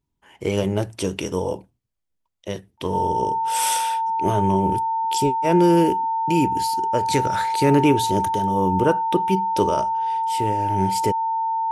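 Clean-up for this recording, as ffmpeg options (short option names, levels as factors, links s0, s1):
-af "bandreject=f=900:w=30"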